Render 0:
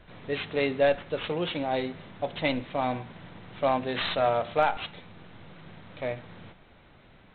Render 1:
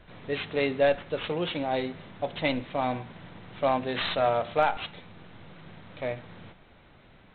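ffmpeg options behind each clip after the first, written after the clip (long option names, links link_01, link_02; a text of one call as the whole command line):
ffmpeg -i in.wav -af anull out.wav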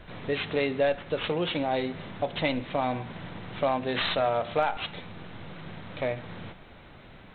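ffmpeg -i in.wav -af "acompressor=threshold=-34dB:ratio=2,volume=6dB" out.wav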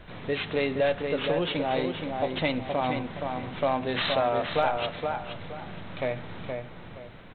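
ffmpeg -i in.wav -filter_complex "[0:a]asplit=2[link_01][link_02];[link_02]adelay=471,lowpass=frequency=2400:poles=1,volume=-4.5dB,asplit=2[link_03][link_04];[link_04]adelay=471,lowpass=frequency=2400:poles=1,volume=0.31,asplit=2[link_05][link_06];[link_06]adelay=471,lowpass=frequency=2400:poles=1,volume=0.31,asplit=2[link_07][link_08];[link_08]adelay=471,lowpass=frequency=2400:poles=1,volume=0.31[link_09];[link_01][link_03][link_05][link_07][link_09]amix=inputs=5:normalize=0" out.wav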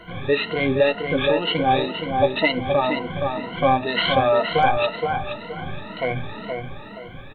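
ffmpeg -i in.wav -af "afftfilt=real='re*pow(10,24/40*sin(2*PI*(1.9*log(max(b,1)*sr/1024/100)/log(2)-(2)*(pts-256)/sr)))':imag='im*pow(10,24/40*sin(2*PI*(1.9*log(max(b,1)*sr/1024/100)/log(2)-(2)*(pts-256)/sr)))':win_size=1024:overlap=0.75,volume=2dB" out.wav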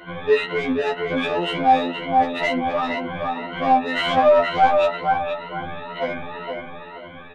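ffmpeg -i in.wav -filter_complex "[0:a]asplit=2[link_01][link_02];[link_02]highpass=frequency=720:poles=1,volume=18dB,asoftclip=type=tanh:threshold=-3.5dB[link_03];[link_01][link_03]amix=inputs=2:normalize=0,lowpass=frequency=1300:poles=1,volume=-6dB,afftfilt=real='re*2*eq(mod(b,4),0)':imag='im*2*eq(mod(b,4),0)':win_size=2048:overlap=0.75,volume=-2.5dB" out.wav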